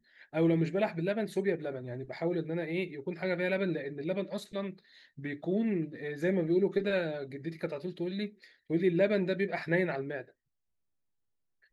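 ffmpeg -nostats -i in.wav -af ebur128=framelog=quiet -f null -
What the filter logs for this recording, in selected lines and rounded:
Integrated loudness:
  I:         -32.5 LUFS
  Threshold: -42.7 LUFS
Loudness range:
  LRA:         2.9 LU
  Threshold: -53.1 LUFS
  LRA low:   -34.7 LUFS
  LRA high:  -31.8 LUFS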